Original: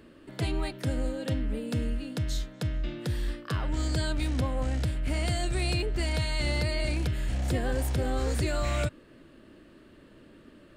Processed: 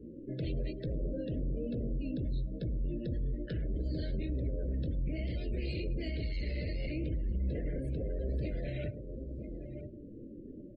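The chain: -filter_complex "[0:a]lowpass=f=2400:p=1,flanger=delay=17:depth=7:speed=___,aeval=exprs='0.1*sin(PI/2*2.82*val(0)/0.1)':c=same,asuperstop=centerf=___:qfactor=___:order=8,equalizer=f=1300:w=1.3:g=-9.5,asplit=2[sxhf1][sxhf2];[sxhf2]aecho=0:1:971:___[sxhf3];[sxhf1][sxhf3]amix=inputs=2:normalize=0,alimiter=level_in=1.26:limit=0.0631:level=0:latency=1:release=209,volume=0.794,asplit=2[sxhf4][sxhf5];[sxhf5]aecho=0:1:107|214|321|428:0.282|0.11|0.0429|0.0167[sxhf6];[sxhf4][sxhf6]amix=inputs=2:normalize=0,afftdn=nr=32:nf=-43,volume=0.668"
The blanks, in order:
1.1, 930, 1.2, 0.15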